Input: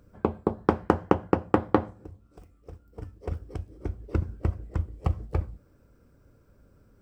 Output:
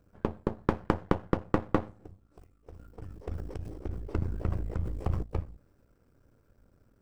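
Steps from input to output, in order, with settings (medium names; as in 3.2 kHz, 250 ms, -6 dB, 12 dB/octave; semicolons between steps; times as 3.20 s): partial rectifier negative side -12 dB; 2.71–5.23 s: decay stretcher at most 44 dB/s; trim -2 dB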